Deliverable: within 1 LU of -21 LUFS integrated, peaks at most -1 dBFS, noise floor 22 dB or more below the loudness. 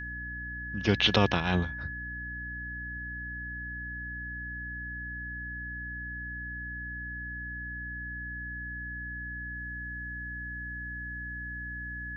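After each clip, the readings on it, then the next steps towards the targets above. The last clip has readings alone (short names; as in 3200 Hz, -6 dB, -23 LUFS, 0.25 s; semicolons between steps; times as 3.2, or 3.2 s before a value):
hum 60 Hz; harmonics up to 300 Hz; hum level -40 dBFS; steady tone 1700 Hz; tone level -37 dBFS; loudness -34.0 LUFS; peak -7.5 dBFS; loudness target -21.0 LUFS
-> de-hum 60 Hz, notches 5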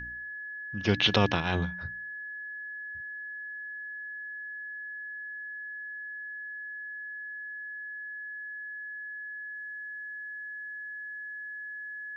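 hum none; steady tone 1700 Hz; tone level -37 dBFS
-> notch 1700 Hz, Q 30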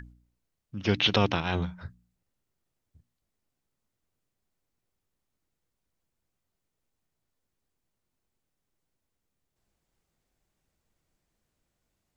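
steady tone none; loudness -27.0 LUFS; peak -8.0 dBFS; loudness target -21.0 LUFS
-> gain +6 dB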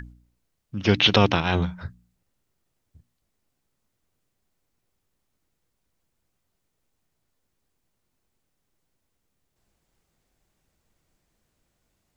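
loudness -21.0 LUFS; peak -2.0 dBFS; noise floor -77 dBFS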